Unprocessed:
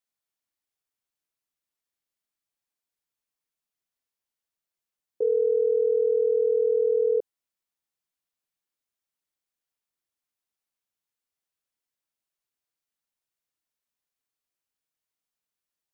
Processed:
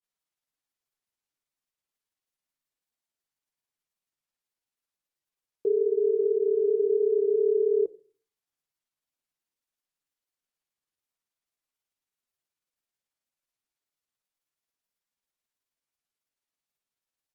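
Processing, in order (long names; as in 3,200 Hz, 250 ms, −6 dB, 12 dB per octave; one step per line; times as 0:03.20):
rectangular room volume 240 cubic metres, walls furnished, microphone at 0.37 metres
granular cloud 100 ms, grains 20 per second, spray 18 ms, pitch spread up and down by 0 semitones
wrong playback speed 48 kHz file played as 44.1 kHz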